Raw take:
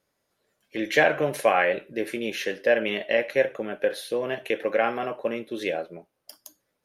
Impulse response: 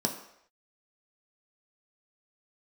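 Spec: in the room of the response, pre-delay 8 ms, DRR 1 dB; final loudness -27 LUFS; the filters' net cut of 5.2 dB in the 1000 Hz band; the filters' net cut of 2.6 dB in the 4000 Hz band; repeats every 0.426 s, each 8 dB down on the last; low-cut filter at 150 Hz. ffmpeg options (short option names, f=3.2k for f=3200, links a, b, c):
-filter_complex "[0:a]highpass=150,equalizer=f=1k:t=o:g=-8,equalizer=f=4k:t=o:g=-3,aecho=1:1:426|852|1278|1704|2130:0.398|0.159|0.0637|0.0255|0.0102,asplit=2[a][b];[1:a]atrim=start_sample=2205,adelay=8[c];[b][c]afir=irnorm=-1:irlink=0,volume=-7.5dB[d];[a][d]amix=inputs=2:normalize=0,volume=-3.5dB"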